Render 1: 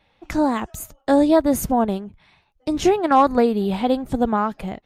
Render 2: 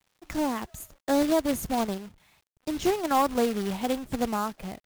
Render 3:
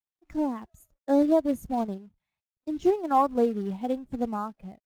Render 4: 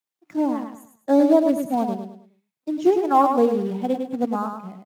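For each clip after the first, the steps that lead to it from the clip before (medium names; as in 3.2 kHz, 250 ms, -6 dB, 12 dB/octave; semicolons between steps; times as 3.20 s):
companded quantiser 4-bit; trim -8.5 dB
spectral contrast expander 1.5:1; trim +3 dB
high-pass 160 Hz 24 dB/octave; on a send: feedback delay 104 ms, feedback 34%, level -6 dB; on the sum: trim +5 dB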